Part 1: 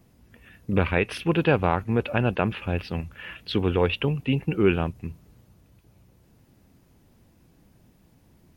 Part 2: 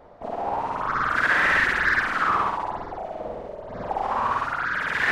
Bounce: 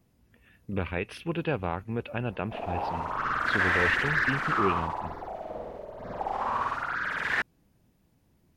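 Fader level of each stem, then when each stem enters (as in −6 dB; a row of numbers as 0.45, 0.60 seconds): −8.5, −5.0 decibels; 0.00, 2.30 seconds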